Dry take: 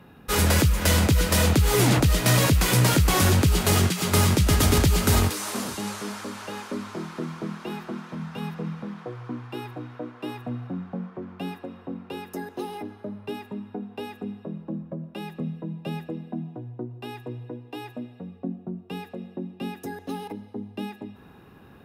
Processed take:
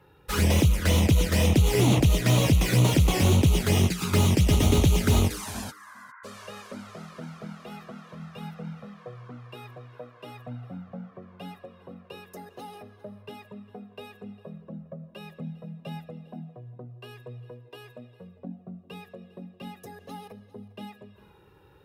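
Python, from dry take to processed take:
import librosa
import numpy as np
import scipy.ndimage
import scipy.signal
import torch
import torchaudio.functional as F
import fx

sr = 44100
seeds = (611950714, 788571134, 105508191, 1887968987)

y = fx.cheby1_bandpass(x, sr, low_hz=1000.0, high_hz=2000.0, order=4, at=(5.7, 6.23), fade=0.02)
y = fx.env_flanger(y, sr, rest_ms=2.3, full_db=-15.5)
y = fx.cheby_harmonics(y, sr, harmonics=(7,), levels_db=(-28,), full_scale_db=-10.0)
y = y + 10.0 ** (-20.5 / 20.0) * np.pad(y, (int(403 * sr / 1000.0), 0))[:len(y)]
y = fx.slew_limit(y, sr, full_power_hz=200.0)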